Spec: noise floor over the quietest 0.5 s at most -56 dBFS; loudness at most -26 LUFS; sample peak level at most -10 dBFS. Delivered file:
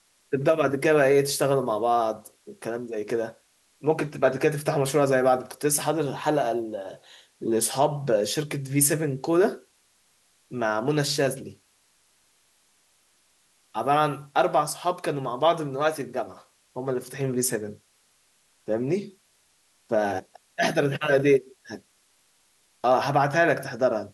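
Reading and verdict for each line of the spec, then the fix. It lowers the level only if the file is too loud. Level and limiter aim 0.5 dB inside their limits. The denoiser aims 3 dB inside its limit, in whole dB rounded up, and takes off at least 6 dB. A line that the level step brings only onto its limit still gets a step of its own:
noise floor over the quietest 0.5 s -65 dBFS: pass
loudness -24.5 LUFS: fail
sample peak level -6.0 dBFS: fail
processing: trim -2 dB; peak limiter -10.5 dBFS

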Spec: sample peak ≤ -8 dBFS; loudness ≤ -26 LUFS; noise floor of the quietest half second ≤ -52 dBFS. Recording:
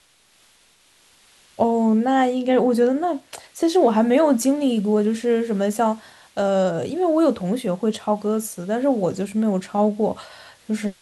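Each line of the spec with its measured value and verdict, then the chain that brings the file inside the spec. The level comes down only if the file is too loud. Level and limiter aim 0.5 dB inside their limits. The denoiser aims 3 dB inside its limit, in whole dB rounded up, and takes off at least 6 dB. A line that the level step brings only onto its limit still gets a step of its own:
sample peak -6.0 dBFS: fail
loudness -20.5 LUFS: fail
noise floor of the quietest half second -57 dBFS: pass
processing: trim -6 dB

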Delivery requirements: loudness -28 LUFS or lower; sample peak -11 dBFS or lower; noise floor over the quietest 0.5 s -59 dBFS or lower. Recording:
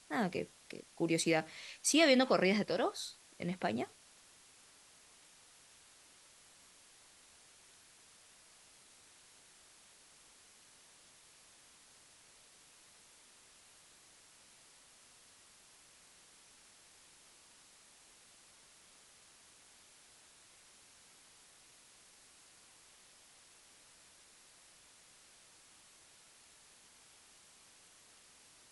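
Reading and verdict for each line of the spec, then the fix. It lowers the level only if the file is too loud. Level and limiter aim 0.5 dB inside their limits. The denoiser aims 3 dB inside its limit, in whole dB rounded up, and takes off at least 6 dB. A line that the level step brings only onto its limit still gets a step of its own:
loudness -33.5 LUFS: pass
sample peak -16.5 dBFS: pass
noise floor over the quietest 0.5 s -63 dBFS: pass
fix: none needed

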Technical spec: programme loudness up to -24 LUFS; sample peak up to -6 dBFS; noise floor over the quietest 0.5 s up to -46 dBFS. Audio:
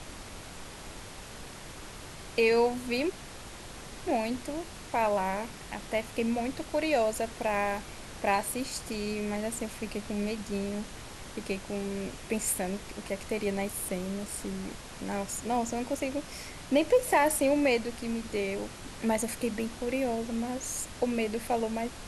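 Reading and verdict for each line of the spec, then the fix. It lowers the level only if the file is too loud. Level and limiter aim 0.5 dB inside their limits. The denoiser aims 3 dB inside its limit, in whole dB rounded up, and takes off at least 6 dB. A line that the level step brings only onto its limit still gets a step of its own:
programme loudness -31.0 LUFS: pass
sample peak -13.5 dBFS: pass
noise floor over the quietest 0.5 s -44 dBFS: fail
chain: noise reduction 6 dB, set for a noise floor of -44 dBFS

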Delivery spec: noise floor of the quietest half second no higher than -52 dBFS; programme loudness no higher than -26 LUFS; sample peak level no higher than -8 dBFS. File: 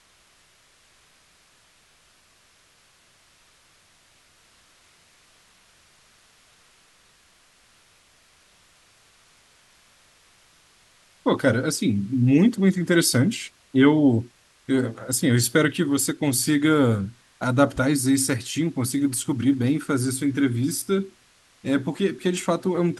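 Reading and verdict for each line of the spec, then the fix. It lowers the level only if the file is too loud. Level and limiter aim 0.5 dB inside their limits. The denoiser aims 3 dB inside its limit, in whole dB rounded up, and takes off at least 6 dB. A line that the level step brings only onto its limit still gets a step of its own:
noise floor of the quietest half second -59 dBFS: pass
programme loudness -22.0 LUFS: fail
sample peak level -4.0 dBFS: fail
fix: trim -4.5 dB

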